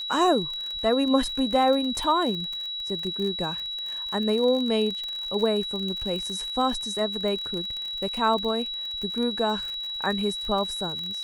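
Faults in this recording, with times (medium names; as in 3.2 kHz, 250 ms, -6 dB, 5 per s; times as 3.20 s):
crackle 45 per s -30 dBFS
whine 3.9 kHz -30 dBFS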